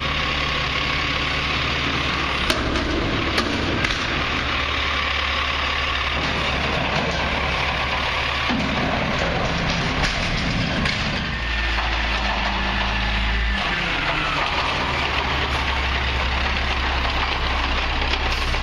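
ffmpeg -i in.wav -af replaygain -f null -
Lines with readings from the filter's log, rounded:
track_gain = +4.1 dB
track_peak = 0.569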